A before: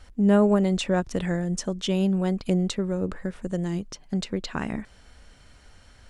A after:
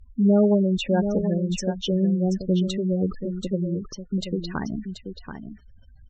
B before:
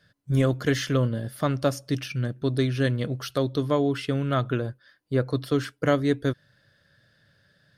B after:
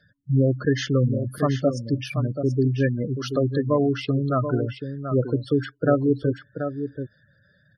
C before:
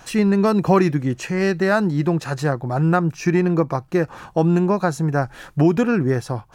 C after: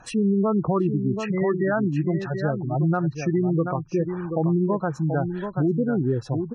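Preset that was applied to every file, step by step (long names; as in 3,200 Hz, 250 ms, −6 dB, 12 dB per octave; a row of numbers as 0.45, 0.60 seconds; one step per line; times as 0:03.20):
gate on every frequency bin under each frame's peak −15 dB strong
on a send: single-tap delay 732 ms −8.5 dB
on the sum: treble cut that deepens with the level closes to 2,200 Hz, closed at −13.5 dBFS
boost into a limiter +10 dB
loudness normalisation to −24 LKFS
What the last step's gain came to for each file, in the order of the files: −8.5, −7.5, −13.5 decibels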